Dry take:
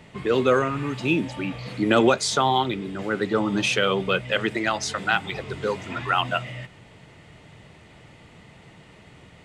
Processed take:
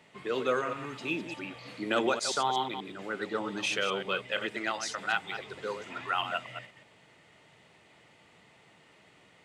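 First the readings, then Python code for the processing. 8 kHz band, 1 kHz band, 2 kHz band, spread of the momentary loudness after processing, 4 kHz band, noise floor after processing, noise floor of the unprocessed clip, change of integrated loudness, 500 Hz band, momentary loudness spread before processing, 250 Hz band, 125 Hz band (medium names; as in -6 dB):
-7.0 dB, -7.5 dB, -7.0 dB, 11 LU, -7.0 dB, -60 dBFS, -50 dBFS, -8.5 dB, -9.5 dB, 10 LU, -12.5 dB, -17.0 dB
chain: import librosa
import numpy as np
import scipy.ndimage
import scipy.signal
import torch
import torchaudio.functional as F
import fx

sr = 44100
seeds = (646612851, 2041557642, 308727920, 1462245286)

y = fx.reverse_delay(x, sr, ms=122, wet_db=-8.5)
y = fx.highpass(y, sr, hz=440.0, slope=6)
y = y * 10.0 ** (-7.5 / 20.0)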